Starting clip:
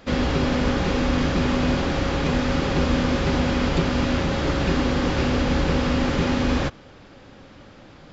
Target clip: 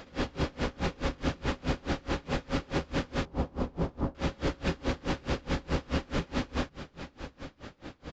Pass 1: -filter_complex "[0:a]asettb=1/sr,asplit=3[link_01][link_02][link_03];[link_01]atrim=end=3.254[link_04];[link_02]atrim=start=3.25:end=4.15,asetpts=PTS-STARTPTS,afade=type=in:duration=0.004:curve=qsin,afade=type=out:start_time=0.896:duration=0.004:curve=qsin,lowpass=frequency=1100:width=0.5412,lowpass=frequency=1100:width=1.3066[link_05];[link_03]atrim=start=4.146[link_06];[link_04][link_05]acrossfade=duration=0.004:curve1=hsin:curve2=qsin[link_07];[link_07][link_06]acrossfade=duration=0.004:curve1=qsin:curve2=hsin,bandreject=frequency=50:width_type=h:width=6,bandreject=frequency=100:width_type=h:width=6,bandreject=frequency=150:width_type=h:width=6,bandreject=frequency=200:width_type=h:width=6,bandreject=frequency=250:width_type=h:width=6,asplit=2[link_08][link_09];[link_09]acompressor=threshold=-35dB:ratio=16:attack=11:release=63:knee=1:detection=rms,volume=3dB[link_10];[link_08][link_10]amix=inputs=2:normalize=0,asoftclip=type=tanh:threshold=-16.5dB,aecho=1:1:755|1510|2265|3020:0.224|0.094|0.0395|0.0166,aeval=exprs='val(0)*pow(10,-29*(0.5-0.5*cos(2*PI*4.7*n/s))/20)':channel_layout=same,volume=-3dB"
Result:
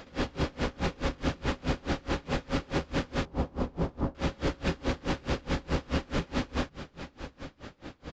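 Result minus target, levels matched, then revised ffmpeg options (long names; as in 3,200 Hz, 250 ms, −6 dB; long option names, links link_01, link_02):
downward compressor: peak gain reduction −7.5 dB
-filter_complex "[0:a]asettb=1/sr,asplit=3[link_01][link_02][link_03];[link_01]atrim=end=3.254[link_04];[link_02]atrim=start=3.25:end=4.15,asetpts=PTS-STARTPTS,afade=type=in:duration=0.004:curve=qsin,afade=type=out:start_time=0.896:duration=0.004:curve=qsin,lowpass=frequency=1100:width=0.5412,lowpass=frequency=1100:width=1.3066[link_05];[link_03]atrim=start=4.146[link_06];[link_04][link_05]acrossfade=duration=0.004:curve1=hsin:curve2=qsin[link_07];[link_07][link_06]acrossfade=duration=0.004:curve1=qsin:curve2=hsin,bandreject=frequency=50:width_type=h:width=6,bandreject=frequency=100:width_type=h:width=6,bandreject=frequency=150:width_type=h:width=6,bandreject=frequency=200:width_type=h:width=6,bandreject=frequency=250:width_type=h:width=6,asplit=2[link_08][link_09];[link_09]acompressor=threshold=-43dB:ratio=16:attack=11:release=63:knee=1:detection=rms,volume=3dB[link_10];[link_08][link_10]amix=inputs=2:normalize=0,asoftclip=type=tanh:threshold=-16.5dB,aecho=1:1:755|1510|2265|3020:0.224|0.094|0.0395|0.0166,aeval=exprs='val(0)*pow(10,-29*(0.5-0.5*cos(2*PI*4.7*n/s))/20)':channel_layout=same,volume=-3dB"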